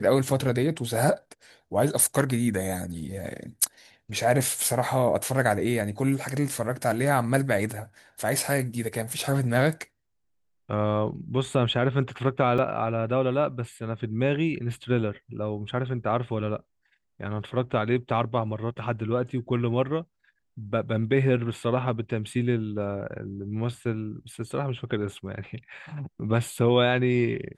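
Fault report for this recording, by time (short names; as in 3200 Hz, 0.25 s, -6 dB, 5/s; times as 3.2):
12.58 gap 3.7 ms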